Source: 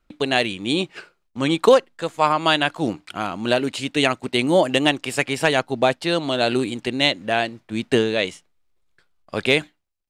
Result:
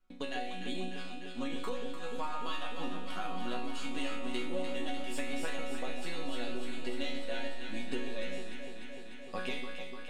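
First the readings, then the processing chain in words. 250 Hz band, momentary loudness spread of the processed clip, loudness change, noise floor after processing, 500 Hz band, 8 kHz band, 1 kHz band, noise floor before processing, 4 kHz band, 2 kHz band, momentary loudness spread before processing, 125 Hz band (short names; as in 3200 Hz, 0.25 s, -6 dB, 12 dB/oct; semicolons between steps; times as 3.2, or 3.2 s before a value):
-16.0 dB, 6 LU, -18.5 dB, -41 dBFS, -20.0 dB, -15.5 dB, -17.5 dB, -70 dBFS, -18.5 dB, -17.5 dB, 9 LU, -19.5 dB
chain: half-wave gain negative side -3 dB; resonator bank F#3 sus4, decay 0.53 s; compressor 10:1, threshold -48 dBFS, peak gain reduction 21.5 dB; on a send: echo with dull and thin repeats by turns 0.149 s, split 870 Hz, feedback 88%, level -6 dB; on the sum: gain +13.5 dB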